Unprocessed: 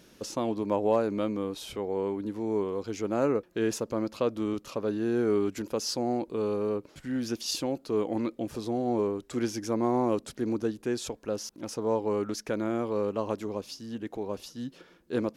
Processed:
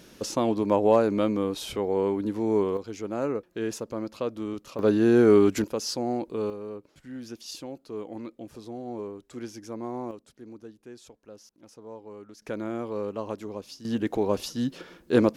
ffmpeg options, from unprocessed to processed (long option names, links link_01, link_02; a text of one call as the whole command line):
ffmpeg -i in.wav -af "asetnsamples=nb_out_samples=441:pad=0,asendcmd='2.77 volume volume -2.5dB;4.79 volume volume 8.5dB;5.64 volume volume 0.5dB;6.5 volume volume -8dB;10.11 volume volume -15dB;12.42 volume volume -2.5dB;13.85 volume volume 9dB',volume=5dB" out.wav